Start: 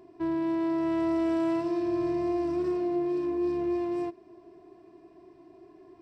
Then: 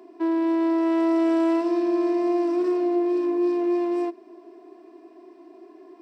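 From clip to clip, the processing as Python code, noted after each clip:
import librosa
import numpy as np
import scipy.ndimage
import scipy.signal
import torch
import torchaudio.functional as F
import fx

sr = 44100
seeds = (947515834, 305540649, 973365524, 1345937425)

y = scipy.signal.sosfilt(scipy.signal.cheby1(6, 1.0, 230.0, 'highpass', fs=sr, output='sos'), x)
y = F.gain(torch.from_numpy(y), 6.0).numpy()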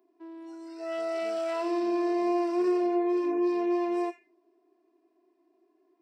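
y = fx.echo_wet_highpass(x, sr, ms=88, feedback_pct=36, hz=1700.0, wet_db=-6.0)
y = fx.noise_reduce_blind(y, sr, reduce_db=21)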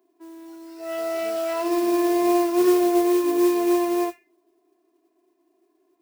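y = fx.mod_noise(x, sr, seeds[0], snr_db=18)
y = fx.upward_expand(y, sr, threshold_db=-36.0, expansion=1.5)
y = F.gain(torch.from_numpy(y), 8.5).numpy()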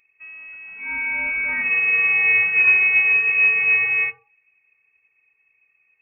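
y = fx.freq_invert(x, sr, carrier_hz=2900)
y = F.gain(torch.from_numpy(y), 2.5).numpy()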